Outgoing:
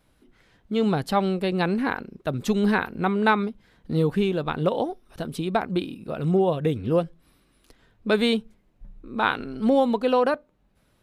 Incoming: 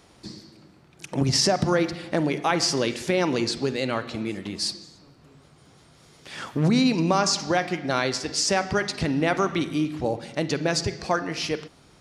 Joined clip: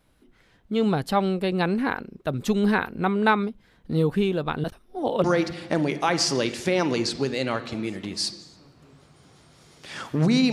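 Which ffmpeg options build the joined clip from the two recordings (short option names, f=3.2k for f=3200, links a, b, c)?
-filter_complex "[0:a]apad=whole_dur=10.52,atrim=end=10.52,asplit=2[a][b];[a]atrim=end=4.642[c];[b]atrim=start=4.638:end=5.242,asetpts=PTS-STARTPTS,areverse[d];[1:a]atrim=start=1.658:end=6.94[e];[c][d]acrossfade=d=0.004:c1=hsin:c2=hsin[f];[f][e]acrossfade=d=0.004:c1=hsin:c2=hsin"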